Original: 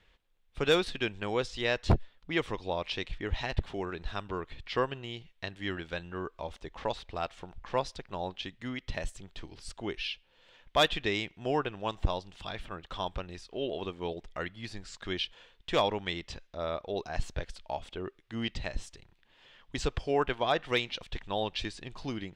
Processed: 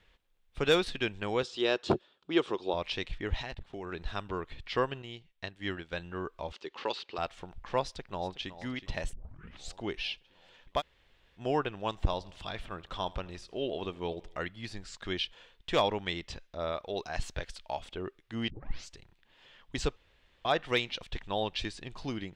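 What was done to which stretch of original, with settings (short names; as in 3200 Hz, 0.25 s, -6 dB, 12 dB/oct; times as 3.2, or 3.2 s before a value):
1.43–2.74 speaker cabinet 210–8400 Hz, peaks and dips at 370 Hz +9 dB, 1300 Hz +3 dB, 2000 Hz -9 dB, 3400 Hz +3 dB, 6100 Hz -3 dB
3.42–3.91 level quantiser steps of 20 dB
5.02–5.97 upward expander, over -50 dBFS
6.52–7.18 speaker cabinet 280–7500 Hz, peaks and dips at 380 Hz +6 dB, 670 Hz -9 dB, 1300 Hz +3 dB, 2800 Hz +8 dB, 4500 Hz +8 dB
7.83–8.52 echo throw 0.37 s, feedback 65%, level -14 dB
9.13 tape start 0.62 s
10.79–11.38 room tone, crossfade 0.06 s
12.03–14.44 feedback echo 81 ms, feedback 56%, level -22.5 dB
16.72–17.85 tilt shelf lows -3 dB, about 810 Hz
18.5 tape start 0.43 s
19.96–20.45 room tone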